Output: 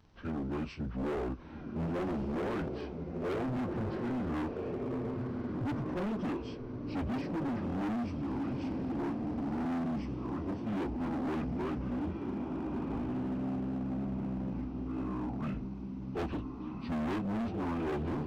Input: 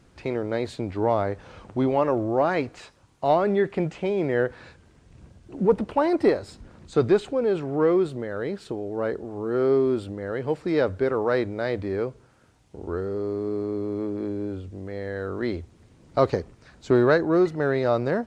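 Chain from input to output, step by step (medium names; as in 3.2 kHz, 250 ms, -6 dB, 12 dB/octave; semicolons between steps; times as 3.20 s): frequency-domain pitch shifter -8 st; echo that smears into a reverb 1507 ms, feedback 43%, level -6.5 dB; overload inside the chain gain 27.5 dB; trim -4.5 dB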